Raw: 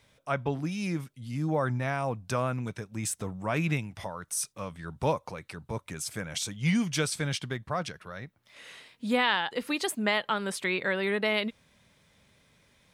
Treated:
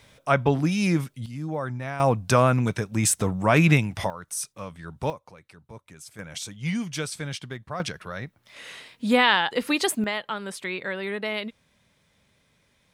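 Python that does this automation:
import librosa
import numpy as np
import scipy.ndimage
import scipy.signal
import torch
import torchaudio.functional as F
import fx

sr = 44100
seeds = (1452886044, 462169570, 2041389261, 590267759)

y = fx.gain(x, sr, db=fx.steps((0.0, 9.0), (1.26, -2.0), (2.0, 10.5), (4.1, 0.5), (5.1, -9.0), (6.19, -2.0), (7.8, 6.5), (10.04, -2.0)))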